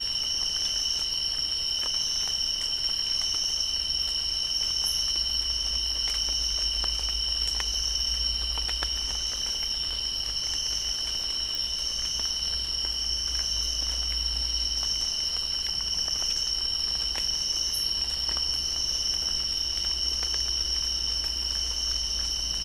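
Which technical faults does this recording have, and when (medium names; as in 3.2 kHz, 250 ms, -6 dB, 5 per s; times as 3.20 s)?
11.55 s: pop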